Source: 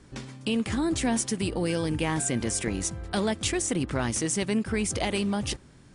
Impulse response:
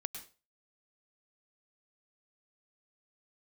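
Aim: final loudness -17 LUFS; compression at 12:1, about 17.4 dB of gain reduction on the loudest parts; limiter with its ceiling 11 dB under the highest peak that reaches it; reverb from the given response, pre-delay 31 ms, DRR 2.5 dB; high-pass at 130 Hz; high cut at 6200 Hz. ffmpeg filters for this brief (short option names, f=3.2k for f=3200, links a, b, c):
-filter_complex "[0:a]highpass=130,lowpass=6.2k,acompressor=threshold=-41dB:ratio=12,alimiter=level_in=12dB:limit=-24dB:level=0:latency=1,volume=-12dB,asplit=2[a][b];[1:a]atrim=start_sample=2205,adelay=31[c];[b][c]afir=irnorm=-1:irlink=0,volume=-1.5dB[d];[a][d]amix=inputs=2:normalize=0,volume=27dB"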